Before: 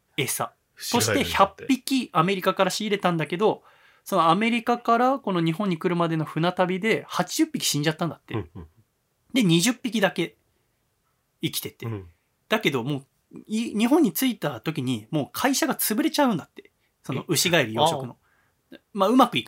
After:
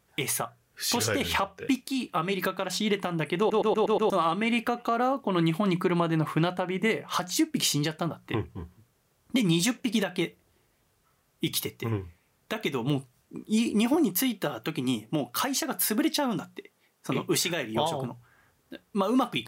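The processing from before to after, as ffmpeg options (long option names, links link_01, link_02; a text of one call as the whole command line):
ffmpeg -i in.wav -filter_complex "[0:a]asettb=1/sr,asplit=3[link_01][link_02][link_03];[link_01]atrim=end=13.944[link_04];[link_02]atrim=start=13.94:end=17.77,asetpts=PTS-STARTPTS,afade=type=in:duration=0.004:curve=qsin,afade=type=out:start_time=3.826:duration=0.004:curve=qsin,highpass=160[link_05];[link_03]atrim=start=17.766[link_06];[link_04][link_05]acrossfade=duration=0.004:curve1=hsin:curve2=qsin[link_07];[link_07][link_06]acrossfade=duration=0.004:curve1=qsin:curve2=hsin,asplit=7[link_08][link_09][link_10][link_11][link_12][link_13][link_14];[link_08]atrim=end=3.502[link_15];[link_09]atrim=start=3.378:end=3.502[link_16];[link_10]atrim=start=3.378:end=3.502[link_17];[link_11]atrim=start=3.378:end=3.502[link_18];[link_12]atrim=start=3.378:end=3.502[link_19];[link_13]atrim=start=3.378:end=3.502[link_20];[link_14]atrim=start=4.098[link_21];[link_15][link_16]acrossfade=duration=0.004:curve1=hsin:curve2=hsin[link_22];[link_22][link_17]acrossfade=duration=0.004:curve1=hsin:curve2=hsin[link_23];[link_23][link_18]acrossfade=duration=0.004:curve1=hsin:curve2=hsin[link_24];[link_24][link_19]acrossfade=duration=0.004:curve1=hsin:curve2=hsin[link_25];[link_25][link_20]acrossfade=duration=0.004:curve1=hsin:curve2=hsin[link_26];[link_26][link_21]acrossfade=duration=0.004:curve1=hsin:curve2=hsin,bandreject=frequency=60:width_type=h:width=6,bandreject=frequency=120:width_type=h:width=6,bandreject=frequency=180:width_type=h:width=6,acompressor=threshold=-22dB:ratio=2.5,alimiter=limit=-17.5dB:level=0:latency=1:release=294,volume=2.5dB" out.wav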